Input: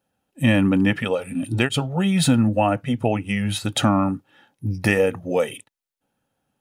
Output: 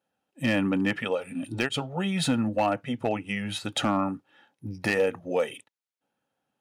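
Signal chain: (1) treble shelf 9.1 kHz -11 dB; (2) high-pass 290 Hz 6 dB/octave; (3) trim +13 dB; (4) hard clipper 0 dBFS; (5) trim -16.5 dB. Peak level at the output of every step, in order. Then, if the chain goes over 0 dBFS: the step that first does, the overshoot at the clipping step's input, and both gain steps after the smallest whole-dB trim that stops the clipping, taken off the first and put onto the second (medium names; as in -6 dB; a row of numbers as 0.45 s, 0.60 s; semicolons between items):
-5.5 dBFS, -6.5 dBFS, +6.5 dBFS, 0.0 dBFS, -16.5 dBFS; step 3, 6.5 dB; step 3 +6 dB, step 5 -9.5 dB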